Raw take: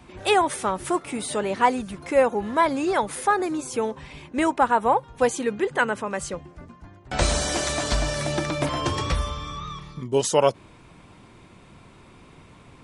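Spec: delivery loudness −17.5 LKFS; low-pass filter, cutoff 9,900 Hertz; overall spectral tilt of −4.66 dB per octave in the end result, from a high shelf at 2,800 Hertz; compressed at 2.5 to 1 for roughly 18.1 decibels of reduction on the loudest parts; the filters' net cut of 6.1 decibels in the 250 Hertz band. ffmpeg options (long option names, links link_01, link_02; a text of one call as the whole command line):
ffmpeg -i in.wav -af "lowpass=9900,equalizer=frequency=250:width_type=o:gain=-8.5,highshelf=frequency=2800:gain=-8.5,acompressor=threshold=-44dB:ratio=2.5,volume=24dB" out.wav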